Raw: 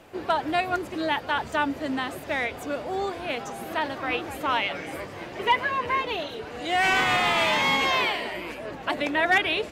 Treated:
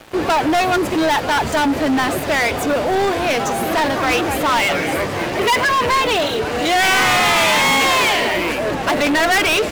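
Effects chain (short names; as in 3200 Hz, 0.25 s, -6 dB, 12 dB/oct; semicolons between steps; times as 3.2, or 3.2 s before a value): sample leveller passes 5; gain -1.5 dB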